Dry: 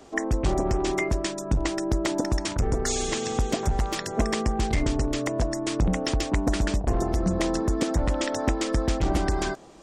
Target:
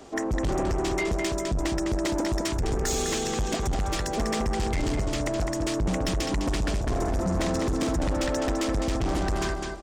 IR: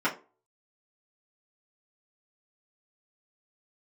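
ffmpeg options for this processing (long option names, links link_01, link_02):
-filter_complex "[0:a]asettb=1/sr,asplit=3[link_01][link_02][link_03];[link_01]atrim=end=6.884[link_04];[link_02]atrim=start=6.88:end=7.93,asetpts=PTS-STARTPTS,afade=type=in:duration=0.004:curve=qsin,afade=type=out:start_time=1.046:duration=0.004:curve=qsin,asplit=2[link_05][link_06];[link_06]adelay=50,volume=-8dB[link_07];[link_05][link_07]amix=inputs=2:normalize=0,atrim=end_sample=46305[link_08];[link_03]atrim=start=7.926[link_09];[link_04][link_08]acrossfade=duration=0.004:curve1=hsin:curve2=qsin[link_10];[link_10][link_09]acrossfade=duration=0.004:curve1=qsin:curve2=hsin,aecho=1:1:206|412|618:0.447|0.116|0.0302,asoftclip=type=tanh:threshold=-24.5dB,volume=2.5dB"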